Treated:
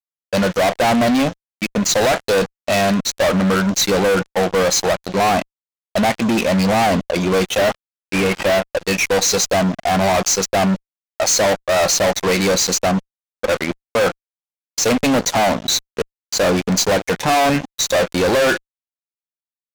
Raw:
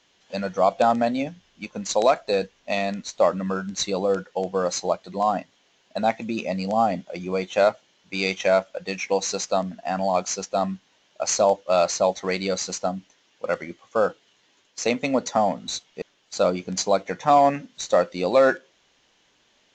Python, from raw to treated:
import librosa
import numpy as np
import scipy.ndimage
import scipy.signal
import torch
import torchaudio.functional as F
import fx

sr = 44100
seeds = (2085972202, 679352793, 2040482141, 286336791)

y = fx.cvsd(x, sr, bps=16000, at=(7.58, 8.66))
y = fx.fuzz(y, sr, gain_db=33.0, gate_db=-39.0)